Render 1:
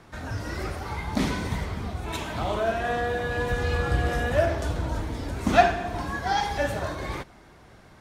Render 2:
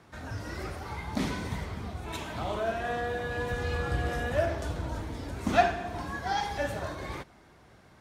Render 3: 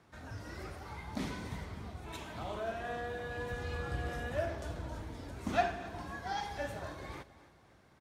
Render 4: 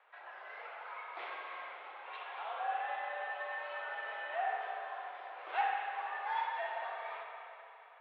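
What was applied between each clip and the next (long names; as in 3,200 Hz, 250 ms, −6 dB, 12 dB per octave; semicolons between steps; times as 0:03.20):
high-pass filter 48 Hz; level −5 dB
repeating echo 268 ms, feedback 45%, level −17.5 dB; level −7.5 dB
soft clipping −27 dBFS, distortion −15 dB; convolution reverb RT60 3.1 s, pre-delay 57 ms, DRR 1 dB; single-sideband voice off tune +99 Hz 520–3,100 Hz; level +1 dB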